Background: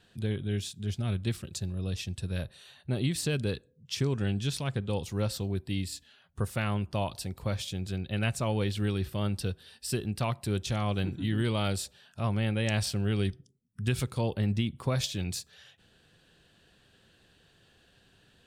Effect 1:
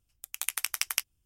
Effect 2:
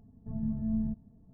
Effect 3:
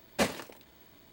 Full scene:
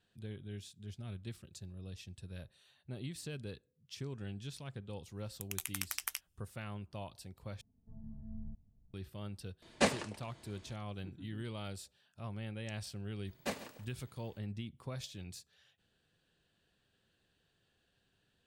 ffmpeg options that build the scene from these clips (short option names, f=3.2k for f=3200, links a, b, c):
-filter_complex "[3:a]asplit=2[a][b];[0:a]volume=-14dB[c];[1:a]alimiter=level_in=12dB:limit=-1dB:release=50:level=0:latency=1[d];[2:a]asubboost=boost=11.5:cutoff=110[e];[a]aresample=22050,aresample=44100[f];[b]aecho=1:1:138|276:0.178|0.0409[g];[c]asplit=2[h][i];[h]atrim=end=7.614[j];[e]atrim=end=1.33,asetpts=PTS-STARTPTS,volume=-17dB[k];[i]atrim=start=8.936[l];[d]atrim=end=1.25,asetpts=PTS-STARTPTS,volume=-15.5dB,afade=t=in:d=0.004:c=hsin,afade=t=out:st=1.246:d=0.004:c=hsin,adelay=227997S[m];[f]atrim=end=1.12,asetpts=PTS-STARTPTS,volume=-1dB,afade=t=in:d=0.004:c=hsin,afade=t=out:st=1.116:d=0.004:c=hsin,adelay=424242S[n];[g]atrim=end=1.12,asetpts=PTS-STARTPTS,volume=-10.5dB,afade=t=in:d=0.004:c=hsin,afade=t=out:st=1.116:d=0.004:c=hsin,adelay=13270[o];[j][k]acrossfade=d=0.004:c1=hsin:c2=hsin[p];[p][l]acrossfade=d=0.004:c1=hsin:c2=hsin[q];[q][m][n][o]amix=inputs=4:normalize=0"